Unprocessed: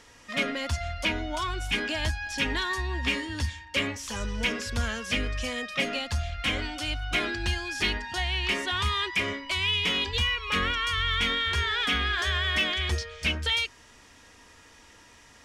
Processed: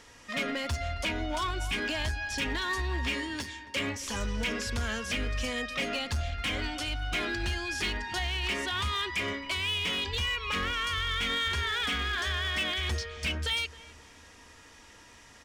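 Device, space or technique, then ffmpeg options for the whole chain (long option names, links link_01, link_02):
limiter into clipper: -filter_complex "[0:a]alimiter=limit=-21.5dB:level=0:latency=1:release=112,asoftclip=type=hard:threshold=-25.5dB,asettb=1/sr,asplit=3[link_01][link_02][link_03];[link_01]atrim=end=3.134[link_04];[link_02]atrim=start=3.13:end=3.75,asetpts=PTS-STARTPTS,afade=type=in:duration=0.004:curve=qsin,afade=type=out:start_time=0.616:duration=0.004:curve=qsin,highpass=190[link_05];[link_03]atrim=start=3.746[link_06];[link_04][link_05]acrossfade=duration=0.004:curve1=hsin:curve2=qsin[link_07];[link_07][link_06]acrossfade=duration=0.004:curve1=qsin:curve2=hsin,asplit=2[link_08][link_09];[link_09]adelay=268,lowpass=frequency=1600:poles=1,volume=-16.5dB,asplit=2[link_10][link_11];[link_11]adelay=268,lowpass=frequency=1600:poles=1,volume=0.46,asplit=2[link_12][link_13];[link_13]adelay=268,lowpass=frequency=1600:poles=1,volume=0.46,asplit=2[link_14][link_15];[link_15]adelay=268,lowpass=frequency=1600:poles=1,volume=0.46[link_16];[link_08][link_10][link_12][link_14][link_16]amix=inputs=5:normalize=0"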